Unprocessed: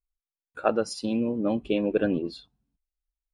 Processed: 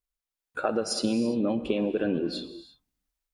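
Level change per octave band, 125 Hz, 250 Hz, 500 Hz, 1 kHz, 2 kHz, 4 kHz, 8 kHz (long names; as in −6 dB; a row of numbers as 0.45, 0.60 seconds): −1.0, 0.0, −1.5, −2.5, −0.5, +5.0, +6.0 decibels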